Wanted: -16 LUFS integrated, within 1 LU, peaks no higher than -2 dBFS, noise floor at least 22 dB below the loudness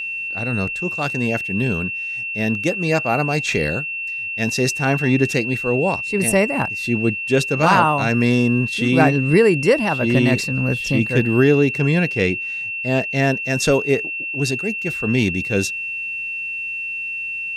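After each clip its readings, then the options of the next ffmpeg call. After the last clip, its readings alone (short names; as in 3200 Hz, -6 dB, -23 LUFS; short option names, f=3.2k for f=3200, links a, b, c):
steady tone 2700 Hz; tone level -24 dBFS; loudness -19.0 LUFS; peak -1.5 dBFS; loudness target -16.0 LUFS
-> -af "bandreject=f=2.7k:w=30"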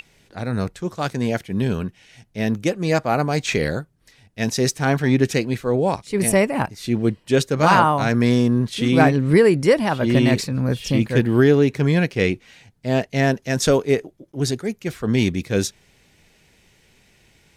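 steady tone none; loudness -20.0 LUFS; peak -1.5 dBFS; loudness target -16.0 LUFS
-> -af "volume=4dB,alimiter=limit=-2dB:level=0:latency=1"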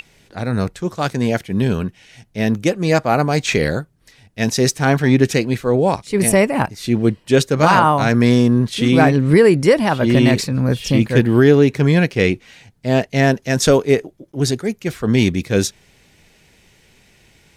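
loudness -16.0 LUFS; peak -2.0 dBFS; noise floor -55 dBFS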